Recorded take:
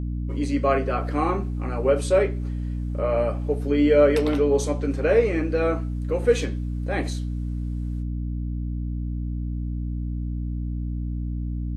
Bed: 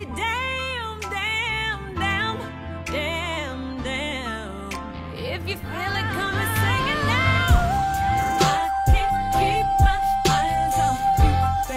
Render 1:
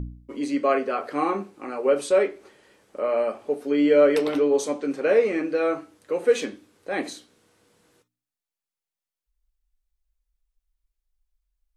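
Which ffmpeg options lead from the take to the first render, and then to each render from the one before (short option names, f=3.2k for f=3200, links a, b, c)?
-af "bandreject=f=60:t=h:w=4,bandreject=f=120:t=h:w=4,bandreject=f=180:t=h:w=4,bandreject=f=240:t=h:w=4,bandreject=f=300:t=h:w=4"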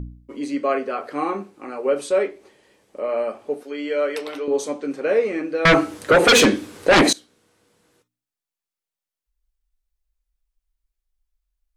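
-filter_complex "[0:a]asettb=1/sr,asplit=3[a][b][c];[a]atrim=end=2.304[d];[b]atrim=start=2.3:end=3.09,asetpts=PTS-STARTPTS,afade=t=in:d=0.004:c=qsin,afade=t=out:st=0.786:d=0.004:c=qsin,equalizer=f=1.4k:w=3.9:g=-7[e];[c]atrim=start=3.086[f];[d][e]acrossfade=d=0.004:c1=hsin:c2=qsin[g];[g][f]acrossfade=d=0.004:c1=qsin:c2=hsin,asettb=1/sr,asplit=3[h][i][j];[h]atrim=end=3.634[k];[i]atrim=start=3.63:end=4.48,asetpts=PTS-STARTPTS,afade=t=in:d=0.004:c=qsin,afade=t=out:st=0.846:d=0.004:c=qsin,highpass=f=890:p=1[l];[j]atrim=start=4.476[m];[k][l]acrossfade=d=0.004:c1=hsin:c2=qsin[n];[n][m]acrossfade=d=0.004:c1=qsin:c2=hsin,asettb=1/sr,asplit=3[o][p][q];[o]atrim=end=5.654[r];[p]atrim=start=5.65:end=7.13,asetpts=PTS-STARTPTS,afade=t=in:d=0.004:c=qsin,afade=t=out:st=1.476:d=0.004:c=qsin,aeval=exprs='0.376*sin(PI/2*6.31*val(0)/0.376)':c=same[s];[q]atrim=start=7.126[t];[r][s]acrossfade=d=0.004:c1=hsin:c2=qsin[u];[u][t]acrossfade=d=0.004:c1=qsin:c2=hsin"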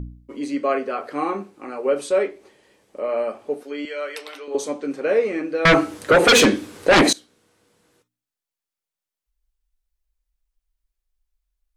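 -filter_complex "[0:a]asettb=1/sr,asplit=3[a][b][c];[a]atrim=end=3.854[d];[b]atrim=start=3.85:end=4.55,asetpts=PTS-STARTPTS,afade=t=in:d=0.004:c=qsin,afade=t=out:st=0.696:d=0.004:c=qsin,highpass=f=1.3k:p=1[e];[c]atrim=start=4.546[f];[d][e]acrossfade=d=0.004:c1=hsin:c2=qsin[g];[g][f]acrossfade=d=0.004:c1=qsin:c2=hsin"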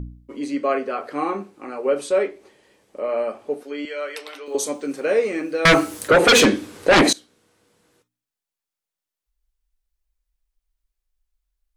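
-filter_complex "[0:a]asettb=1/sr,asplit=3[a][b][c];[a]atrim=end=4.464[d];[b]atrim=start=4.46:end=6.08,asetpts=PTS-STARTPTS,afade=t=in:d=0.004:c=qsin,afade=t=out:st=1.616:d=0.004:c=qsin,aemphasis=mode=production:type=50fm[e];[c]atrim=start=6.076[f];[d][e]acrossfade=d=0.004:c1=hsin:c2=qsin[g];[g][f]acrossfade=d=0.004:c1=qsin:c2=hsin"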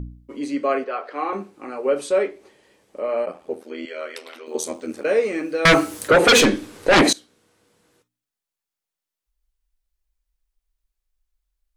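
-filter_complex "[0:a]asettb=1/sr,asplit=3[a][b][c];[a]atrim=end=0.844[d];[b]atrim=start=0.84:end=1.33,asetpts=PTS-STARTPTS,afade=t=in:d=0.004:c=qsin,afade=t=out:st=0.486:d=0.004:c=qsin,acrossover=split=350 5100:gain=0.0794 1 0.141[e][f][g];[e][f][g]amix=inputs=3:normalize=0[h];[c]atrim=start=1.326[i];[d][h]acrossfade=d=0.004:c1=hsin:c2=qsin[j];[j][i]acrossfade=d=0.004:c1=qsin:c2=hsin,asplit=3[k][l][m];[k]afade=t=out:st=3.25:d=0.02[n];[l]aeval=exprs='val(0)*sin(2*PI*41*n/s)':c=same,afade=t=in:st=3.25:d=0.02,afade=t=out:st=5.03:d=0.02[o];[m]afade=t=in:st=5.03:d=0.02[p];[n][o][p]amix=inputs=3:normalize=0,asettb=1/sr,asplit=3[q][r][s];[q]atrim=end=6.414[t];[r]atrim=start=6.41:end=6.93,asetpts=PTS-STARTPTS,afade=t=in:d=0.004:c=qsin,afade=t=out:st=0.516:d=0.004:c=qsin,aeval=exprs='if(lt(val(0),0),0.708*val(0),val(0))':c=same[u];[s]atrim=start=6.926[v];[t][u]acrossfade=d=0.004:c1=hsin:c2=qsin[w];[w][v]acrossfade=d=0.004:c1=qsin:c2=hsin"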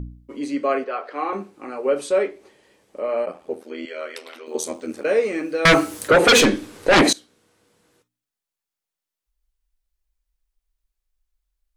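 -af anull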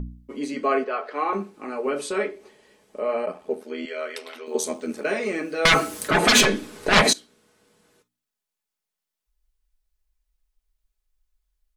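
-af "afftfilt=real='re*lt(hypot(re,im),0.891)':imag='im*lt(hypot(re,im),0.891)':win_size=1024:overlap=0.75,aecho=1:1:4.7:0.41"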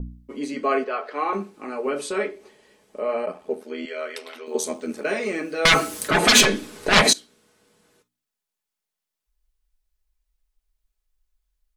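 -af "adynamicequalizer=threshold=0.0398:dfrequency=2400:dqfactor=0.7:tfrequency=2400:tqfactor=0.7:attack=5:release=100:ratio=0.375:range=1.5:mode=boostabove:tftype=highshelf"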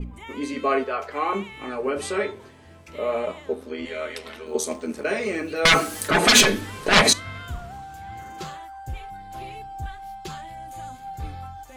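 -filter_complex "[1:a]volume=-16.5dB[a];[0:a][a]amix=inputs=2:normalize=0"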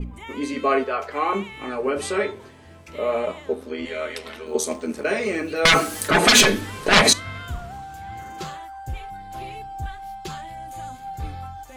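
-af "volume=2dB,alimiter=limit=-3dB:level=0:latency=1"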